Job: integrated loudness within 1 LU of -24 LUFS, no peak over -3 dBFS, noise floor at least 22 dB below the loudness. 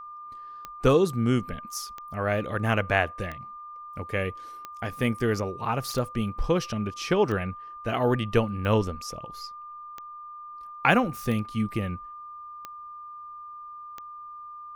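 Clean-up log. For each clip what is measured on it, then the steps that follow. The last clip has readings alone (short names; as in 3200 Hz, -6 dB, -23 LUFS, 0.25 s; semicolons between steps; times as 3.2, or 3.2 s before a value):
clicks 11; steady tone 1200 Hz; tone level -39 dBFS; loudness -27.0 LUFS; peak -4.5 dBFS; loudness target -24.0 LUFS
-> de-click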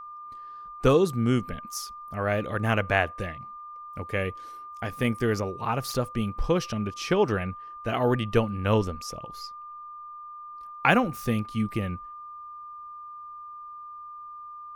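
clicks 0; steady tone 1200 Hz; tone level -39 dBFS
-> notch 1200 Hz, Q 30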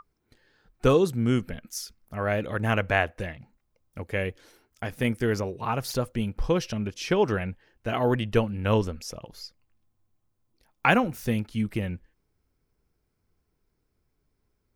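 steady tone none; loudness -27.5 LUFS; peak -4.5 dBFS; loudness target -24.0 LUFS
-> gain +3.5 dB; limiter -3 dBFS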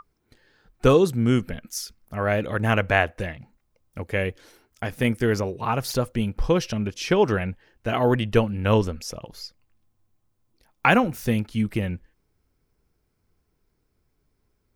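loudness -24.0 LUFS; peak -3.0 dBFS; noise floor -72 dBFS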